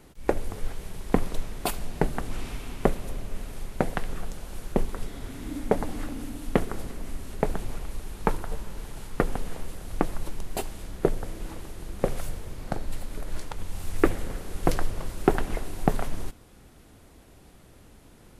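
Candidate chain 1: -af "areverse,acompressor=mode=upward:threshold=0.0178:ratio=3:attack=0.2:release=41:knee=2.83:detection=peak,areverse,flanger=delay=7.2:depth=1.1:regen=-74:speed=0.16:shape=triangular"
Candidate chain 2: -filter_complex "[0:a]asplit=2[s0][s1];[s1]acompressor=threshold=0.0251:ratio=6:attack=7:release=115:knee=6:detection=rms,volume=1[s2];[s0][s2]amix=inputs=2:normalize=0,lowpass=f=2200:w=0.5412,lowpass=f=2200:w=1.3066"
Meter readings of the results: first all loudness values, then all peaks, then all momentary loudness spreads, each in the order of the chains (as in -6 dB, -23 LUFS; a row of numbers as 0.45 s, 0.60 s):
-36.5 LUFS, -30.5 LUFS; -8.0 dBFS, -2.0 dBFS; 13 LU, 12 LU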